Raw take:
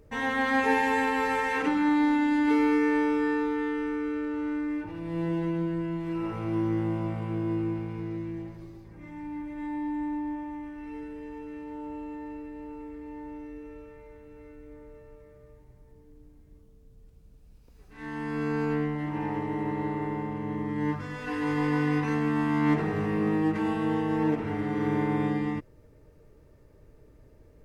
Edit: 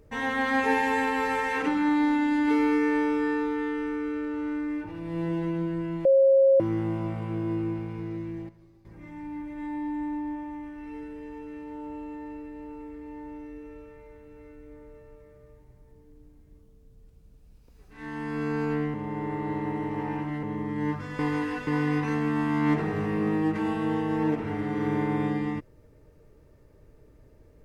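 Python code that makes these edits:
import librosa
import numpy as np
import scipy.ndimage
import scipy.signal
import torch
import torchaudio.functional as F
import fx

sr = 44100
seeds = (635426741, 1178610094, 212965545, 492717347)

y = fx.edit(x, sr, fx.bleep(start_s=6.05, length_s=0.55, hz=541.0, db=-15.0),
    fx.clip_gain(start_s=8.49, length_s=0.36, db=-11.5),
    fx.reverse_span(start_s=18.94, length_s=1.49),
    fx.reverse_span(start_s=21.19, length_s=0.48), tone=tone)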